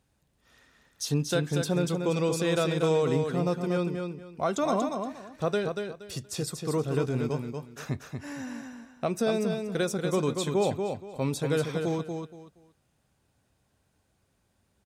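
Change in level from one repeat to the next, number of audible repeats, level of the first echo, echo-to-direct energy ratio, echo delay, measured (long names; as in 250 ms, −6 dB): −12.5 dB, 3, −5.5 dB, −5.0 dB, 236 ms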